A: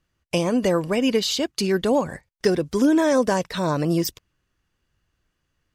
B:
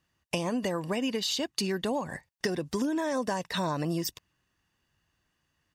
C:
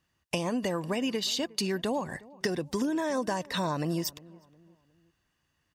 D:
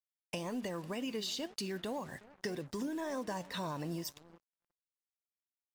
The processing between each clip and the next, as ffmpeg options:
-af "highpass=f=160:p=1,aecho=1:1:1.1:0.32,acompressor=threshold=-27dB:ratio=6"
-filter_complex "[0:a]asplit=2[a][b];[b]adelay=360,lowpass=f=1.2k:p=1,volume=-21dB,asplit=2[c][d];[d]adelay=360,lowpass=f=1.2k:p=1,volume=0.42,asplit=2[e][f];[f]adelay=360,lowpass=f=1.2k:p=1,volume=0.42[g];[a][c][e][g]amix=inputs=4:normalize=0"
-filter_complex "[0:a]asplit=2[a][b];[b]volume=27dB,asoftclip=hard,volume=-27dB,volume=-8.5dB[c];[a][c]amix=inputs=2:normalize=0,flanger=delay=6.7:depth=5:regen=82:speed=1.9:shape=triangular,acrusher=bits=7:mix=0:aa=0.5,volume=-6.5dB"

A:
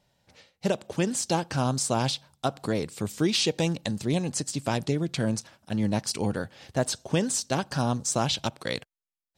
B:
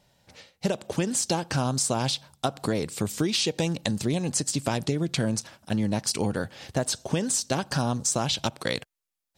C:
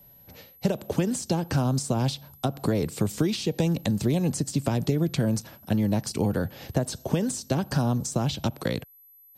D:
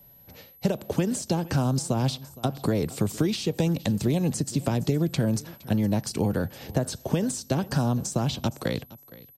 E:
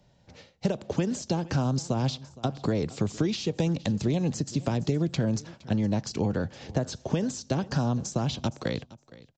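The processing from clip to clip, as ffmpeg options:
-af "equalizer=f=12k:t=o:w=1.7:g=2.5,acompressor=threshold=-27dB:ratio=6,volume=5dB"
-filter_complex "[0:a]aeval=exprs='val(0)+0.00355*sin(2*PI*12000*n/s)':c=same,acrossover=split=190|390[a][b][c];[a]acompressor=threshold=-32dB:ratio=4[d];[b]acompressor=threshold=-36dB:ratio=4[e];[c]acompressor=threshold=-29dB:ratio=4[f];[d][e][f]amix=inputs=3:normalize=0,tiltshelf=f=640:g=5,volume=2.5dB"
-af "aecho=1:1:465|930:0.1|0.015"
-af "aresample=16000,aresample=44100,volume=-2dB"

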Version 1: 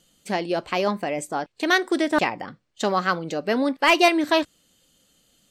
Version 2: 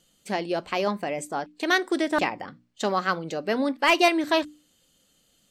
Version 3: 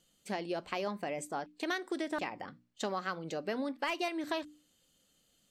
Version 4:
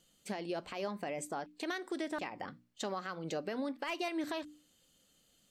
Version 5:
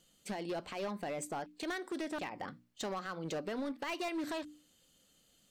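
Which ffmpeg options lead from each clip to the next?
-af "bandreject=f=60:t=h:w=6,bandreject=f=120:t=h:w=6,bandreject=f=180:t=h:w=6,bandreject=f=240:t=h:w=6,bandreject=f=300:t=h:w=6,volume=-2.5dB"
-af "acompressor=threshold=-25dB:ratio=6,volume=-6.5dB"
-af "alimiter=level_in=5.5dB:limit=-24dB:level=0:latency=1:release=158,volume=-5.5dB,volume=1.5dB"
-af "asoftclip=type=hard:threshold=-34.5dB,volume=1dB"

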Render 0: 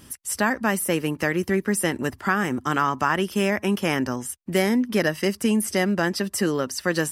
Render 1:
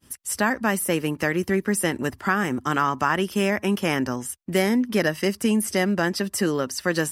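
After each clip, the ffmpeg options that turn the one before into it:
-af "agate=range=-33dB:threshold=-42dB:ratio=3:detection=peak"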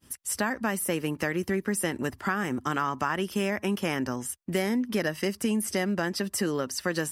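-af "acompressor=threshold=-24dB:ratio=2,volume=-2dB"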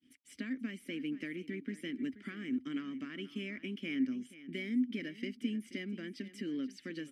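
-filter_complex "[0:a]aeval=exprs='0.266*(cos(1*acos(clip(val(0)/0.266,-1,1)))-cos(1*PI/2))+0.0075*(cos(6*acos(clip(val(0)/0.266,-1,1)))-cos(6*PI/2))+0.00944*(cos(8*acos(clip(val(0)/0.266,-1,1)))-cos(8*PI/2))':c=same,asplit=3[a][b][c];[a]bandpass=f=270:t=q:w=8,volume=0dB[d];[b]bandpass=f=2.29k:t=q:w=8,volume=-6dB[e];[c]bandpass=f=3.01k:t=q:w=8,volume=-9dB[f];[d][e][f]amix=inputs=3:normalize=0,aecho=1:1:480:0.168,volume=1dB"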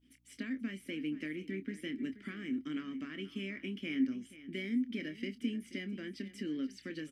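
-filter_complex "[0:a]aeval=exprs='val(0)+0.000251*(sin(2*PI*60*n/s)+sin(2*PI*2*60*n/s)/2+sin(2*PI*3*60*n/s)/3+sin(2*PI*4*60*n/s)/4+sin(2*PI*5*60*n/s)/5)':c=same,asplit=2[a][b];[b]adelay=26,volume=-10.5dB[c];[a][c]amix=inputs=2:normalize=0"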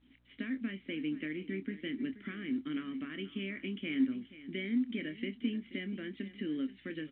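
-af "volume=1.5dB" -ar 8000 -c:a pcm_mulaw

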